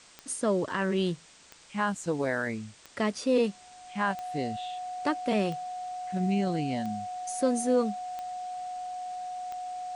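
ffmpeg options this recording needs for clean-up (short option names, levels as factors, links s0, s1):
-af "adeclick=t=4,bandreject=f=730:w=30,afwtdn=0.0025"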